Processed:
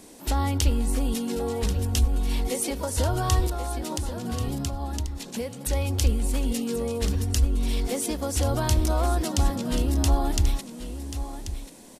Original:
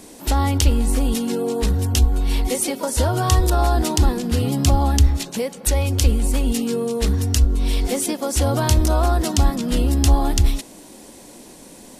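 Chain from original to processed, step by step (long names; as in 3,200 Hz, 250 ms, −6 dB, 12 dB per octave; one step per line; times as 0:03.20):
0:03.47–0:05.70: downward compressor 6 to 1, threshold −21 dBFS, peak gain reduction 12 dB
single-tap delay 1,086 ms −11 dB
level −6 dB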